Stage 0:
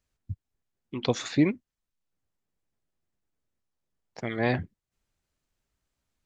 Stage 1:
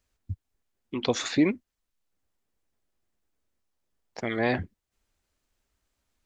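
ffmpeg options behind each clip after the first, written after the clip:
ffmpeg -i in.wav -filter_complex "[0:a]equalizer=frequency=140:width=2.3:gain=-9,asplit=2[link_01][link_02];[link_02]alimiter=limit=-22dB:level=0:latency=1,volume=-1dB[link_03];[link_01][link_03]amix=inputs=2:normalize=0,volume=-1.5dB" out.wav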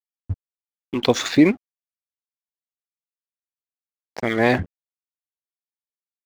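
ffmpeg -i in.wav -af "adynamicsmooth=sensitivity=6.5:basefreq=6100,aeval=exprs='sgn(val(0))*max(abs(val(0))-0.00447,0)':channel_layout=same,volume=8.5dB" out.wav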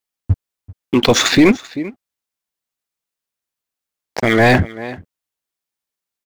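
ffmpeg -i in.wav -af "aecho=1:1:388:0.0891,apsyclip=15dB,volume=-4dB" out.wav

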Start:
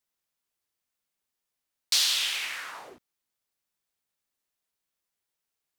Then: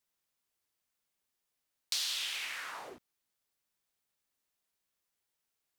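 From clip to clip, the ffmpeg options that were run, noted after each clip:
ffmpeg -i in.wav -af "acompressor=threshold=-40dB:ratio=2" out.wav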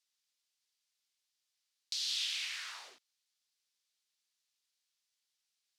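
ffmpeg -i in.wav -af "alimiter=level_in=4dB:limit=-24dB:level=0:latency=1:release=467,volume=-4dB,bandpass=frequency=4600:width_type=q:width=1.3:csg=0,volume=6.5dB" out.wav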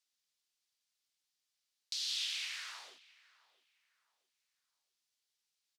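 ffmpeg -i in.wav -filter_complex "[0:a]asplit=2[link_01][link_02];[link_02]adelay=664,lowpass=frequency=1900:poles=1,volume=-18.5dB,asplit=2[link_03][link_04];[link_04]adelay=664,lowpass=frequency=1900:poles=1,volume=0.36,asplit=2[link_05][link_06];[link_06]adelay=664,lowpass=frequency=1900:poles=1,volume=0.36[link_07];[link_01][link_03][link_05][link_07]amix=inputs=4:normalize=0,volume=-1.5dB" out.wav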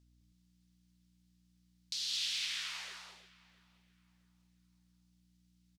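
ffmpeg -i in.wav -af "aeval=exprs='val(0)+0.000447*(sin(2*PI*60*n/s)+sin(2*PI*2*60*n/s)/2+sin(2*PI*3*60*n/s)/3+sin(2*PI*4*60*n/s)/4+sin(2*PI*5*60*n/s)/5)':channel_layout=same,aecho=1:1:211|322:0.596|0.422" out.wav

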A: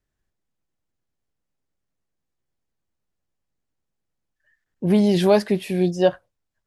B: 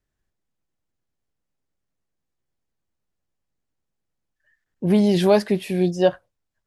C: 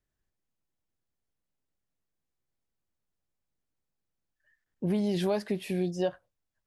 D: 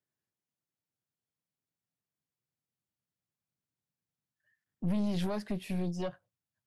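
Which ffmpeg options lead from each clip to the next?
ffmpeg -i in.wav -af anull out.wav
ffmpeg -i in.wav -af "acompressor=threshold=-22dB:ratio=3,volume=-5dB" out.wav
ffmpeg -i in.wav -af "highpass=frequency=110:width=0.5412,highpass=frequency=110:width=1.3066,asubboost=boost=3:cutoff=210,aeval=exprs='(tanh(15.8*val(0)+0.65)-tanh(0.65))/15.8':channel_layout=same,volume=-1.5dB" out.wav

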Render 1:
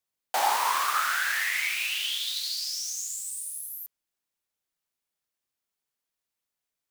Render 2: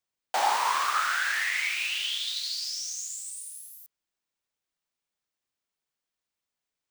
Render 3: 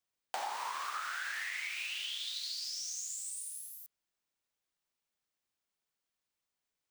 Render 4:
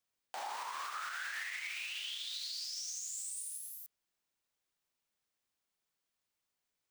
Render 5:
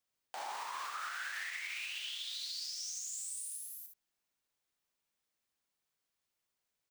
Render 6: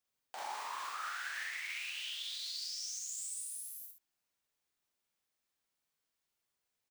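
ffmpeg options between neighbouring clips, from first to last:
ffmpeg -i in.wav -af "equalizer=frequency=13000:width=1.4:gain=-13.5" out.wav
ffmpeg -i in.wav -af "acompressor=threshold=-35dB:ratio=6,volume=-1.5dB" out.wav
ffmpeg -i in.wav -af "alimiter=level_in=9dB:limit=-24dB:level=0:latency=1:release=84,volume=-9dB,volume=1dB" out.wav
ffmpeg -i in.wav -af "aecho=1:1:60|74:0.376|0.355,volume=-1dB" out.wav
ffmpeg -i in.wav -filter_complex "[0:a]asplit=2[link_01][link_02];[link_02]adelay=46,volume=-2.5dB[link_03];[link_01][link_03]amix=inputs=2:normalize=0,volume=-2dB" out.wav

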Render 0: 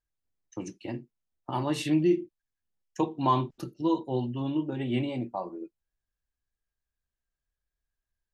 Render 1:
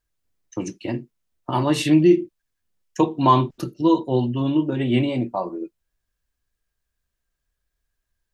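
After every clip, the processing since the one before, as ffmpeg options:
ffmpeg -i in.wav -af "bandreject=frequency=810:width=12,volume=9dB" out.wav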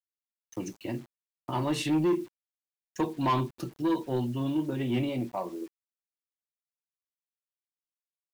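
ffmpeg -i in.wav -af "asoftclip=type=tanh:threshold=-13.5dB,acrusher=bits=7:mix=0:aa=0.000001,volume=-7dB" out.wav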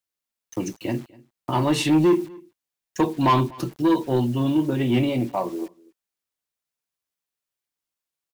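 ffmpeg -i in.wav -af "aecho=1:1:246:0.0631,volume=8dB" out.wav

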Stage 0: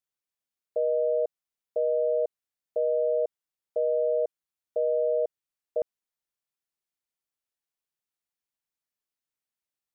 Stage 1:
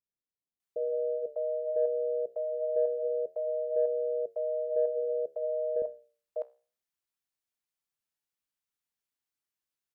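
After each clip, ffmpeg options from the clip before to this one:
ffmpeg -i in.wav -filter_complex "[0:a]acrossover=split=560[link_01][link_02];[link_02]adelay=600[link_03];[link_01][link_03]amix=inputs=2:normalize=0,acontrast=61,flanger=delay=9.6:depth=6.5:regen=-76:speed=0.24:shape=sinusoidal,volume=-2.5dB" out.wav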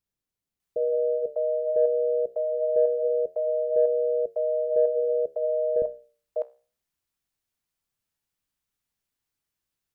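ffmpeg -i in.wav -af "lowshelf=frequency=180:gain=11.5,volume=5dB" out.wav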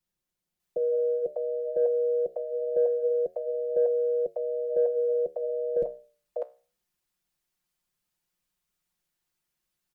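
ffmpeg -i in.wav -filter_complex "[0:a]aecho=1:1:5.6:0.83,acrossover=split=150|380[link_01][link_02][link_03];[link_01]acrusher=bits=5:mode=log:mix=0:aa=0.000001[link_04];[link_04][link_02][link_03]amix=inputs=3:normalize=0" out.wav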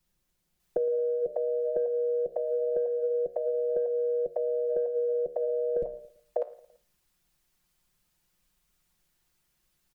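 ffmpeg -i in.wav -af "lowshelf=frequency=110:gain=10,acompressor=threshold=-33dB:ratio=12,aecho=1:1:112|224|336:0.0944|0.0444|0.0209,volume=7.5dB" out.wav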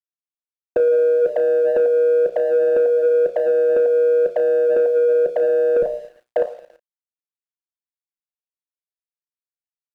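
ffmpeg -i in.wav -filter_complex "[0:a]asplit=2[link_01][link_02];[link_02]highpass=frequency=720:poles=1,volume=17dB,asoftclip=type=tanh:threshold=-15.5dB[link_03];[link_01][link_03]amix=inputs=2:normalize=0,lowpass=frequency=1100:poles=1,volume=-6dB,aeval=exprs='sgn(val(0))*max(abs(val(0))-0.00119,0)':channel_layout=same,asplit=2[link_04][link_05];[link_05]adelay=33,volume=-12dB[link_06];[link_04][link_06]amix=inputs=2:normalize=0,volume=7.5dB" out.wav

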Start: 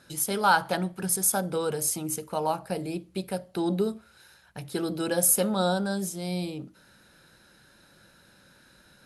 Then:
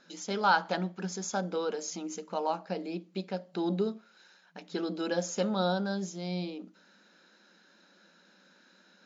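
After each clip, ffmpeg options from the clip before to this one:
ffmpeg -i in.wav -af "afftfilt=real='re*between(b*sr/4096,170,7300)':imag='im*between(b*sr/4096,170,7300)':win_size=4096:overlap=0.75,volume=-3.5dB" out.wav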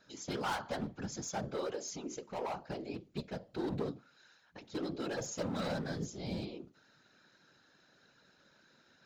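ffmpeg -i in.wav -af "volume=29dB,asoftclip=hard,volume=-29dB,afftfilt=real='hypot(re,im)*cos(2*PI*random(0))':imag='hypot(re,im)*sin(2*PI*random(1))':win_size=512:overlap=0.75,volume=1.5dB" out.wav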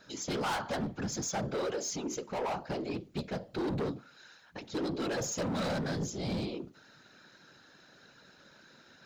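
ffmpeg -i in.wav -af "asoftclip=type=tanh:threshold=-36.5dB,volume=8dB" out.wav

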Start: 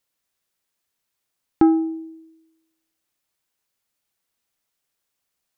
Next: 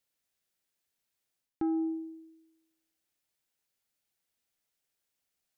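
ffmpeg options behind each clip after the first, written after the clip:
ffmpeg -i in.wav -af "equalizer=frequency=1100:width_type=o:width=0.44:gain=-5.5,areverse,acompressor=threshold=-24dB:ratio=6,areverse,volume=-5dB" out.wav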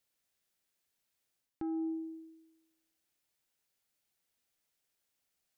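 ffmpeg -i in.wav -af "alimiter=level_in=8dB:limit=-24dB:level=0:latency=1:release=335,volume=-8dB,volume=1dB" out.wav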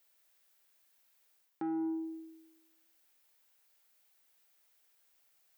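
ffmpeg -i in.wav -filter_complex "[0:a]aemphasis=mode=production:type=bsi,asplit=2[link_01][link_02];[link_02]highpass=frequency=720:poles=1,volume=12dB,asoftclip=type=tanh:threshold=-32.5dB[link_03];[link_01][link_03]amix=inputs=2:normalize=0,lowpass=frequency=1300:poles=1,volume=-6dB,volume=5dB" out.wav

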